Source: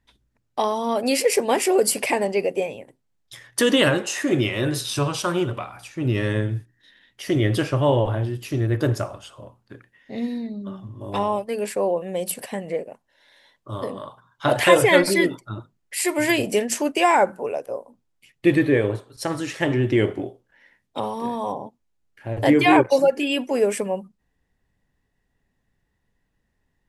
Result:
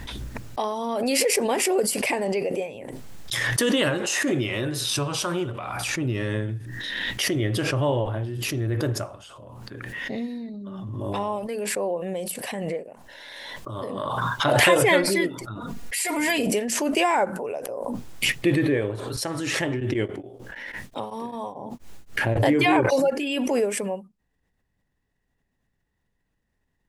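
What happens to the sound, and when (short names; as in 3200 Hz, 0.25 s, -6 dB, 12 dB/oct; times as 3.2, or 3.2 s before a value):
15.55–16.47 comb 4.2 ms, depth 87%
19.73–22.39 beating tremolo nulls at 7.8 Hz -> 3.2 Hz
whole clip: backwards sustainer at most 21 dB/s; gain -5 dB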